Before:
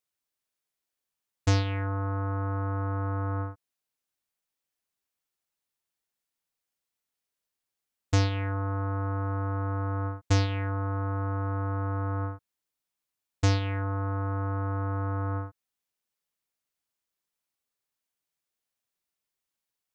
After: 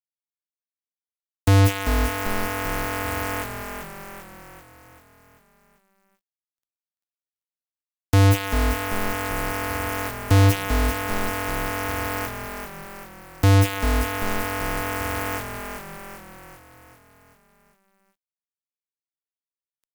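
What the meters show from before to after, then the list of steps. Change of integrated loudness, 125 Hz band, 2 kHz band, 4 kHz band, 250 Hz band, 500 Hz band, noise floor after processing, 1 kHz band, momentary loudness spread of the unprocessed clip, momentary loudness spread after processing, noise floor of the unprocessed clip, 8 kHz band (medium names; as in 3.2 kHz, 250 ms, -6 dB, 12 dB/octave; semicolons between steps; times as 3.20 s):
+7.0 dB, +5.5 dB, +12.5 dB, +9.5 dB, +7.5 dB, +8.5 dB, under -85 dBFS, +7.5 dB, 6 LU, 20 LU, under -85 dBFS, no reading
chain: local Wiener filter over 41 samples; gate -28 dBFS, range -15 dB; bass shelf 190 Hz -6.5 dB; added noise blue -57 dBFS; fuzz box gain 45 dB, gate -44 dBFS; on a send: frequency-shifting echo 390 ms, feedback 55%, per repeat -43 Hz, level -6.5 dB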